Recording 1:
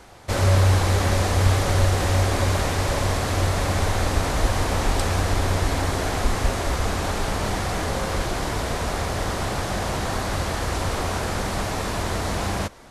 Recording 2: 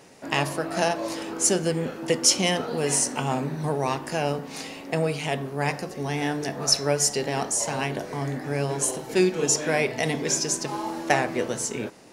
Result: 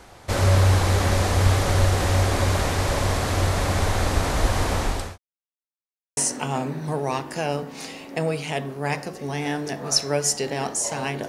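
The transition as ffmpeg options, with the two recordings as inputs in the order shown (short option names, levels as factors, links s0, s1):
-filter_complex "[0:a]apad=whole_dur=11.28,atrim=end=11.28,asplit=2[s0][s1];[s0]atrim=end=5.18,asetpts=PTS-STARTPTS,afade=t=out:st=4.61:d=0.57:c=qsin[s2];[s1]atrim=start=5.18:end=6.17,asetpts=PTS-STARTPTS,volume=0[s3];[1:a]atrim=start=2.93:end=8.04,asetpts=PTS-STARTPTS,afade=t=in:d=0.004:c=hsin[s4];[s2][s3][s4]concat=n=3:v=0:a=1"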